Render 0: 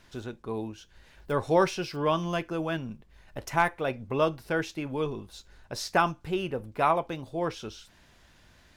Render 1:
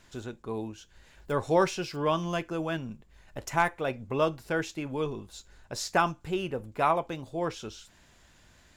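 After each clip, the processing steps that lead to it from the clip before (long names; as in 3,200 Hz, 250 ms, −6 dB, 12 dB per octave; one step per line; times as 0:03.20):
parametric band 7,200 Hz +9 dB 0.23 octaves
level −1 dB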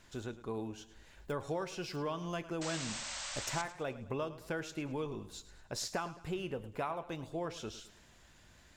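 downward compressor 6 to 1, threshold −32 dBFS, peak gain reduction 13.5 dB
sound drawn into the spectrogram noise, 0:02.61–0:03.62, 530–8,400 Hz −40 dBFS
feedback echo with a swinging delay time 107 ms, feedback 43%, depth 57 cents, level −15.5 dB
level −2.5 dB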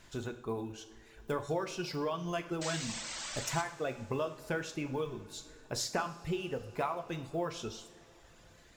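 one scale factor per block 7 bits
reverb reduction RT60 1.3 s
coupled-rooms reverb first 0.55 s, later 4.7 s, from −18 dB, DRR 7 dB
level +3 dB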